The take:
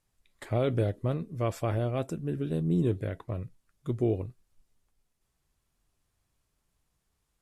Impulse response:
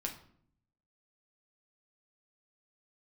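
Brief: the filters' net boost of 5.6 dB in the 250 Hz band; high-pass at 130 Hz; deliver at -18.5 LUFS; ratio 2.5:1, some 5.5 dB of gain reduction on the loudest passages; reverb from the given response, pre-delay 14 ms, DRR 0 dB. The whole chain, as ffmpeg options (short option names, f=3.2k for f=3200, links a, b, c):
-filter_complex "[0:a]highpass=130,equalizer=f=250:t=o:g=8.5,acompressor=threshold=-26dB:ratio=2.5,asplit=2[a][b];[1:a]atrim=start_sample=2205,adelay=14[c];[b][c]afir=irnorm=-1:irlink=0,volume=-0.5dB[d];[a][d]amix=inputs=2:normalize=0,volume=10dB"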